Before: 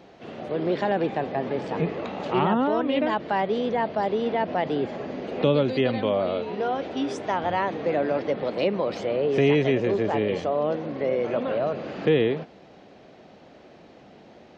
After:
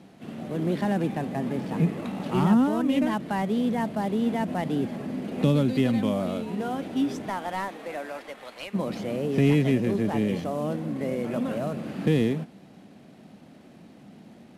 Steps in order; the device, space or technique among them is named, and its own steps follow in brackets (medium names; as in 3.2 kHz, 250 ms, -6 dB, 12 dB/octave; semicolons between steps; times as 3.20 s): 7.29–8.73 s: high-pass 360 Hz -> 1.2 kHz 12 dB/octave; early wireless headset (high-pass 220 Hz 6 dB/octave; CVSD coder 64 kbps); resonant low shelf 310 Hz +11 dB, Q 1.5; trim -3.5 dB